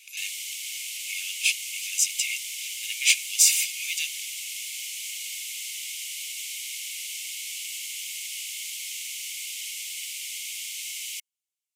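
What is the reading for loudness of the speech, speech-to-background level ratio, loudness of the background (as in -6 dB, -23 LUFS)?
-24.0 LUFS, 8.5 dB, -32.5 LUFS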